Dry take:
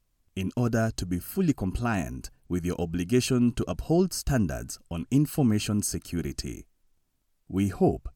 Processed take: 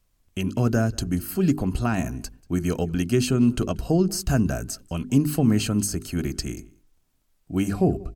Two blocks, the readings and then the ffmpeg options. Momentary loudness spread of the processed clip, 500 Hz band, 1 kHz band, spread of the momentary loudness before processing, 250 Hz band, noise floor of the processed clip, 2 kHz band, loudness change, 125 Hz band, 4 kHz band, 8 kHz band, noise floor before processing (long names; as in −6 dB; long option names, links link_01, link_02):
10 LU, +2.5 dB, +2.0 dB, 12 LU, +3.5 dB, −67 dBFS, +2.5 dB, +3.5 dB, +4.0 dB, +3.5 dB, +3.0 dB, −72 dBFS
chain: -filter_complex "[0:a]bandreject=frequency=50:width_type=h:width=6,bandreject=frequency=100:width_type=h:width=6,bandreject=frequency=150:width_type=h:width=6,bandreject=frequency=200:width_type=h:width=6,bandreject=frequency=250:width_type=h:width=6,bandreject=frequency=300:width_type=h:width=6,bandreject=frequency=350:width_type=h:width=6,bandreject=frequency=400:width_type=h:width=6,acrossover=split=320[link_01][link_02];[link_02]acompressor=threshold=-29dB:ratio=6[link_03];[link_01][link_03]amix=inputs=2:normalize=0,asplit=2[link_04][link_05];[link_05]adelay=186.6,volume=-24dB,highshelf=frequency=4000:gain=-4.2[link_06];[link_04][link_06]amix=inputs=2:normalize=0,volume=5dB"